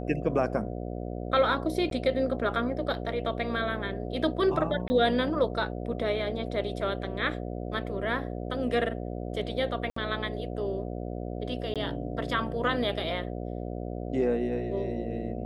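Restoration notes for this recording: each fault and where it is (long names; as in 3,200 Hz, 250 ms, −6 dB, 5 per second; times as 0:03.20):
mains buzz 60 Hz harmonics 12 −35 dBFS
0:01.90–0:01.91: drop-out 12 ms
0:04.88–0:04.90: drop-out 20 ms
0:09.90–0:09.96: drop-out 64 ms
0:11.74–0:11.76: drop-out 17 ms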